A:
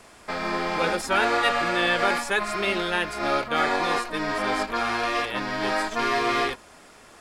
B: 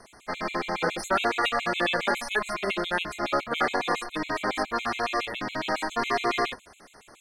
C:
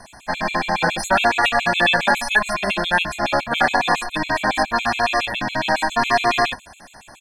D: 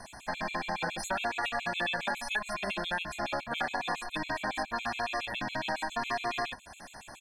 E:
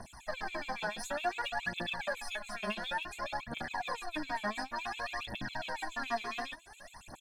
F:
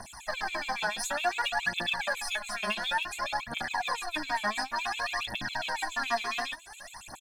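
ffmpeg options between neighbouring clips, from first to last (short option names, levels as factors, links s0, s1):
-af "afftfilt=real='re*gt(sin(2*PI*7.2*pts/sr)*(1-2*mod(floor(b*sr/1024/2100),2)),0)':imag='im*gt(sin(2*PI*7.2*pts/sr)*(1-2*mod(floor(b*sr/1024/2100),2)),0)':win_size=1024:overlap=0.75"
-af "aecho=1:1:1.2:0.68,volume=2.24"
-af "acompressor=threshold=0.0282:ratio=2.5,volume=0.631"
-af "aphaser=in_gain=1:out_gain=1:delay=4.9:decay=0.74:speed=0.56:type=triangular,volume=0.422"
-af "firequalizer=gain_entry='entry(520,0);entry(790,6);entry(6000,10)':delay=0.05:min_phase=1"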